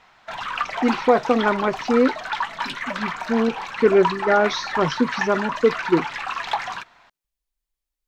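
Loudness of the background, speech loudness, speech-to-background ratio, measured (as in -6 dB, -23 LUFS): -27.5 LUFS, -21.0 LUFS, 6.5 dB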